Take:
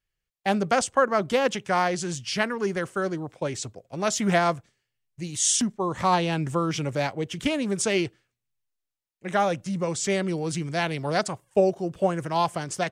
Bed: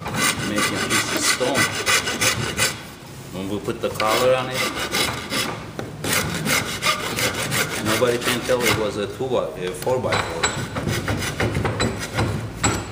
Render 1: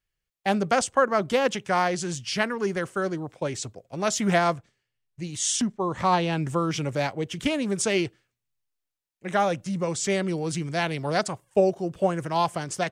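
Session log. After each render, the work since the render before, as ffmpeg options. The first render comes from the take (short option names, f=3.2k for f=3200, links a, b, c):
-filter_complex "[0:a]asettb=1/sr,asplit=3[a][b][c];[a]atrim=end=4.544[d];[b]atrim=start=4.54:end=6.37,asetpts=PTS-STARTPTS,afade=t=in:d=0.004:c=qsin,afade=t=out:st=1.826:d=0.004:c=qsin,highshelf=f=7.7k:g=-8.5[e];[c]atrim=start=6.366[f];[d][e]acrossfade=d=0.004:c1=hsin:c2=qsin[g];[g][f]acrossfade=d=0.004:c1=qsin:c2=hsin"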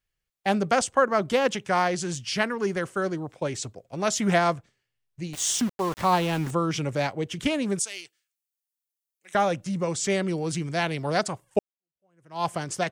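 -filter_complex "[0:a]asettb=1/sr,asplit=3[a][b][c];[a]atrim=end=5.334[d];[b]atrim=start=5.33:end=6.51,asetpts=PTS-STARTPTS,afade=t=in:d=0.004:c=qsin,afade=t=out:st=1.176:d=0.004:c=qsin,aeval=exprs='val(0)*gte(abs(val(0)),0.0237)':c=same[e];[c]atrim=start=6.506[f];[d][e]acrossfade=d=0.004:c1=hsin:c2=qsin[g];[g][f]acrossfade=d=0.004:c1=qsin:c2=hsin,asettb=1/sr,asplit=3[h][i][j];[h]atrim=end=7.794[k];[i]atrim=start=7.79:end=9.35,asetpts=PTS-STARTPTS,afade=t=in:d=0.004:c=qsin,afade=t=out:st=1.556:d=0.004:c=qsin,aderivative[l];[j]atrim=start=9.346[m];[k][l]acrossfade=d=0.004:c1=hsin:c2=qsin[n];[n][m]acrossfade=d=0.004:c1=qsin:c2=hsin,asplit=2[o][p];[o]atrim=end=11.59,asetpts=PTS-STARTPTS,afade=t=out:st=11.586:d=0.004:c=hsin[q];[p]atrim=start=11.59,asetpts=PTS-STARTPTS,afade=t=in:d=0.87:c=exp[r];[q][r]concat=n=2:v=0:a=1"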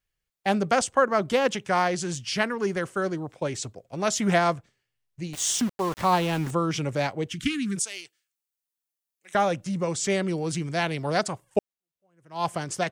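-filter_complex "[0:a]asplit=3[a][b][c];[a]afade=t=out:st=7.29:d=0.02[d];[b]asuperstop=centerf=650:order=8:qfactor=0.69,afade=t=in:st=7.29:d=0.02,afade=t=out:st=7.75:d=0.02[e];[c]afade=t=in:st=7.75:d=0.02[f];[d][e][f]amix=inputs=3:normalize=0"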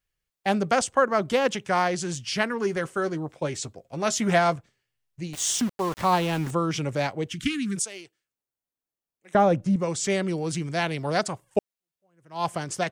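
-filter_complex "[0:a]asettb=1/sr,asplit=3[a][b][c];[a]atrim=end=2.494[d];[b]atrim=start=2.49:end=4.56,asetpts=PTS-STARTPTS,afade=t=in:d=0.004:c=qsin,afade=t=out:st=2.066:d=0.004:c=qsin,asplit=2[e][f];[f]adelay=13,volume=-11dB[g];[e][g]amix=inputs=2:normalize=0,atrim=end_sample=91287[h];[c]atrim=start=4.556[i];[d][h]acrossfade=d=0.004:c1=hsin:c2=qsin[j];[j][i]acrossfade=d=0.004:c1=qsin:c2=hsin,asettb=1/sr,asplit=3[k][l][m];[k]atrim=end=7.864[n];[l]atrim=start=7.86:end=9.76,asetpts=PTS-STARTPTS,afade=t=in:d=0.004:c=qsin,afade=t=out:st=1.896:d=0.004:c=qsin,tiltshelf=f=1.2k:g=7.5[o];[m]atrim=start=9.756[p];[n][o]acrossfade=d=0.004:c1=hsin:c2=qsin[q];[q][p]acrossfade=d=0.004:c1=qsin:c2=hsin"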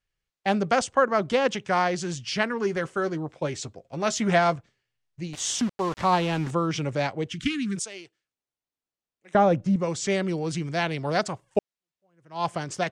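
-af "lowpass=6.7k"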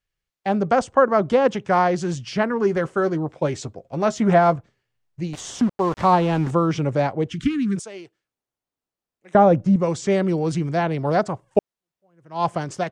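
-filter_complex "[0:a]acrossover=split=1400[a][b];[a]dynaudnorm=f=230:g=5:m=6.5dB[c];[b]alimiter=level_in=1.5dB:limit=-24dB:level=0:latency=1:release=431,volume=-1.5dB[d];[c][d]amix=inputs=2:normalize=0"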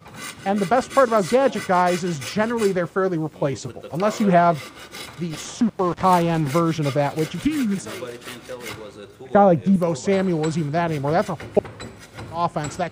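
-filter_complex "[1:a]volume=-14.5dB[a];[0:a][a]amix=inputs=2:normalize=0"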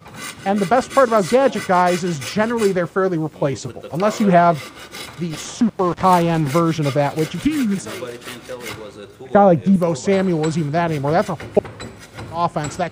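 -af "volume=3dB,alimiter=limit=-2dB:level=0:latency=1"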